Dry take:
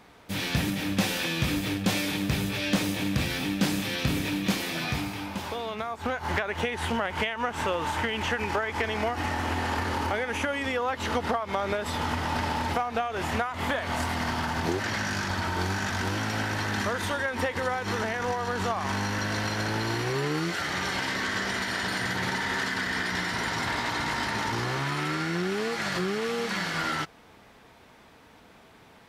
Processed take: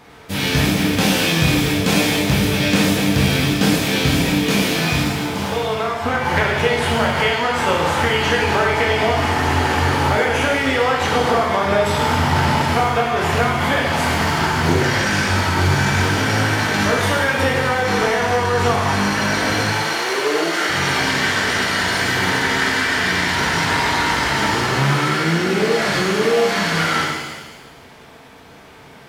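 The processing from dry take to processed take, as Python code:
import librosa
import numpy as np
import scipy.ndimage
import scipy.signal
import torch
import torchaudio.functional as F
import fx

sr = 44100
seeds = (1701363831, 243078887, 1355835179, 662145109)

y = fx.highpass(x, sr, hz=fx.line((19.64, 590.0), (20.68, 220.0)), slope=24, at=(19.64, 20.68), fade=0.02)
y = fx.rev_shimmer(y, sr, seeds[0], rt60_s=1.2, semitones=7, shimmer_db=-8, drr_db=-2.0)
y = F.gain(torch.from_numpy(y), 6.5).numpy()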